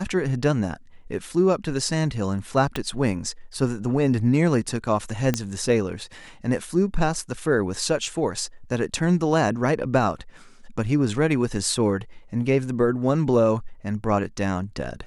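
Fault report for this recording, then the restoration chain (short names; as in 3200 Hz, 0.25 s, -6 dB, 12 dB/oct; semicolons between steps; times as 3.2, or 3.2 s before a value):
2.76 pop -11 dBFS
5.34 pop -8 dBFS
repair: de-click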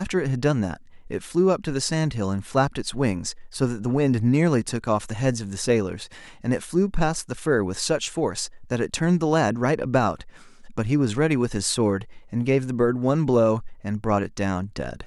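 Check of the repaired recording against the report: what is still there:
2.76 pop
5.34 pop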